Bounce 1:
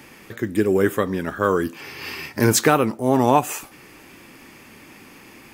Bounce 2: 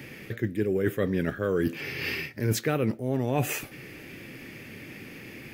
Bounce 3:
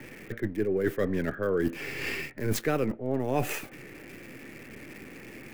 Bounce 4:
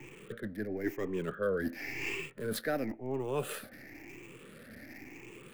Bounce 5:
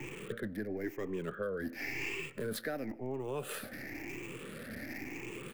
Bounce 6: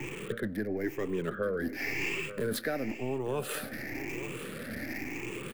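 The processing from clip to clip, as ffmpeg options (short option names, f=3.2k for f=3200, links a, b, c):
-af "equalizer=f=125:t=o:w=1:g=9,equalizer=f=500:t=o:w=1:g=5,equalizer=f=1k:t=o:w=1:g=-12,equalizer=f=2k:t=o:w=1:g=6,equalizer=f=8k:t=o:w=1:g=-7,areverse,acompressor=threshold=-22dB:ratio=16,areverse"
-filter_complex "[0:a]acrossover=split=220|960|2500[a][b][c][d];[a]aeval=exprs='max(val(0),0)':c=same[e];[d]acrusher=bits=5:dc=4:mix=0:aa=0.000001[f];[e][b][c][f]amix=inputs=4:normalize=0"
-filter_complex "[0:a]afftfilt=real='re*pow(10,13/40*sin(2*PI*(0.7*log(max(b,1)*sr/1024/100)/log(2)-(0.96)*(pts-256)/sr)))':imag='im*pow(10,13/40*sin(2*PI*(0.7*log(max(b,1)*sr/1024/100)/log(2)-(0.96)*(pts-256)/sr)))':win_size=1024:overlap=0.75,acrossover=split=180[a][b];[a]alimiter=level_in=8.5dB:limit=-24dB:level=0:latency=1:release=317,volume=-8.5dB[c];[c][b]amix=inputs=2:normalize=0,volume=-7dB"
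-filter_complex "[0:a]asplit=2[a][b];[b]adelay=151.6,volume=-28dB,highshelf=f=4k:g=-3.41[c];[a][c]amix=inputs=2:normalize=0,acompressor=threshold=-42dB:ratio=5,volume=6.5dB"
-af "aecho=1:1:884:0.211,volume=5dB"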